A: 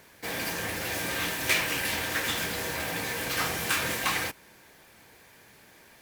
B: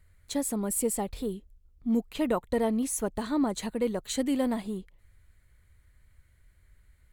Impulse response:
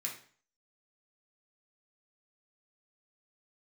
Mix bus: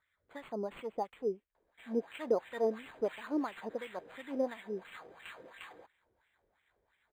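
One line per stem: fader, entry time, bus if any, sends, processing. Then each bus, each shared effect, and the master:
-2.0 dB, 1.55 s, no send, auto duck -11 dB, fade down 2.00 s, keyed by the second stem
+2.0 dB, 0.00 s, no send, dry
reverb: off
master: wah 2.9 Hz 410–2600 Hz, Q 2.5; decimation joined by straight lines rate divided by 8×

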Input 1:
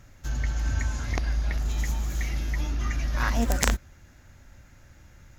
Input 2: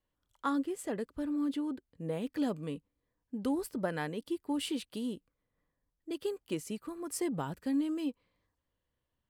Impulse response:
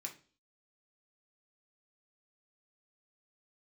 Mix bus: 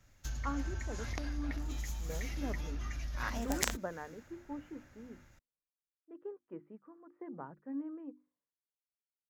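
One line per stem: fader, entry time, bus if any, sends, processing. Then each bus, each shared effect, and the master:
+1.0 dB, 0.00 s, no send, compressor 6:1, threshold -34 dBFS, peak gain reduction 15.5 dB
-7.0 dB, 0.00 s, no send, LPF 1700 Hz 24 dB/oct; notches 50/100/150/200/250/300/350 Hz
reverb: off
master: low shelf 350 Hz -3.5 dB; three-band expander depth 70%

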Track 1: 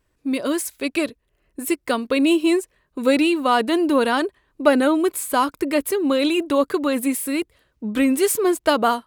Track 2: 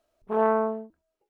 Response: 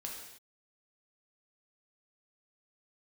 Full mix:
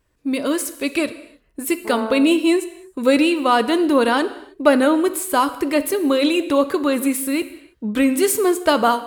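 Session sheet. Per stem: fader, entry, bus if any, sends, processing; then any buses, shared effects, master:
-0.5 dB, 0.00 s, send -6 dB, dry
-4.5 dB, 1.55 s, no send, dry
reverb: on, pre-delay 3 ms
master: dry

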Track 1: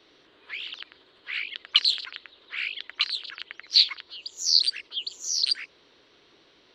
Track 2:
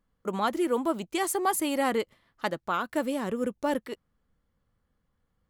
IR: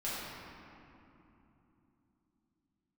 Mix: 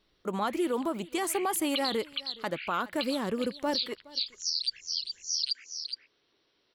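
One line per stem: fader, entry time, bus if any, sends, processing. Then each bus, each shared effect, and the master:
-3.0 dB, 0.00 s, no send, echo send -9 dB, spectral gate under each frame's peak -25 dB strong; bell 5300 Hz +8.5 dB 0.27 oct; upward expander 1.5:1, over -36 dBFS
-0.5 dB, 0.00 s, no send, echo send -23.5 dB, dry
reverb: off
echo: echo 0.417 s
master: limiter -20.5 dBFS, peak gain reduction 13.5 dB

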